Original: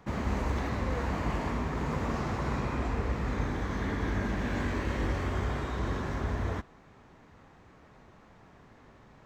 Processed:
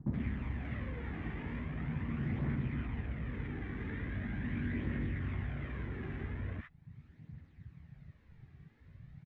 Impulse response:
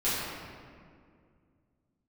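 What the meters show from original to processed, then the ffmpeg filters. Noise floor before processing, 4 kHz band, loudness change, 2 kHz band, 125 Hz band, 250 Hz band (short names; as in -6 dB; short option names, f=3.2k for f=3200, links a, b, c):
-57 dBFS, -13.5 dB, -6.5 dB, -7.5 dB, -4.0 dB, -5.0 dB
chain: -filter_complex "[0:a]afwtdn=0.00794,highshelf=f=3.5k:g=-9.5,asplit=2[a][b];[b]adelay=13,volume=-14dB[c];[a][c]amix=inputs=2:normalize=0,acompressor=threshold=-50dB:ratio=2.5,aphaser=in_gain=1:out_gain=1:delay=2.7:decay=0.39:speed=0.41:type=triangular,equalizer=f=125:t=o:w=1:g=9,equalizer=f=250:t=o:w=1:g=7,equalizer=f=500:t=o:w=1:g=-4,equalizer=f=1k:t=o:w=1:g=-4,equalizer=f=2k:t=o:w=1:g=10,equalizer=f=4k:t=o:w=1:g=7,acrossover=split=1100[d][e];[e]adelay=70[f];[d][f]amix=inputs=2:normalize=0,volume=1dB"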